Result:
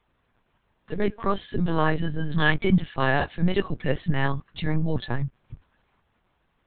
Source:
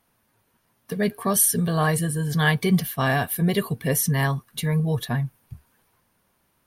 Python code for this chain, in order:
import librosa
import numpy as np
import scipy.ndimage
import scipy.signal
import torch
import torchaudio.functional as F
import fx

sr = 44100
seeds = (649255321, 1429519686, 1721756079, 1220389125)

y = fx.lpc_vocoder(x, sr, seeds[0], excitation='pitch_kept', order=10)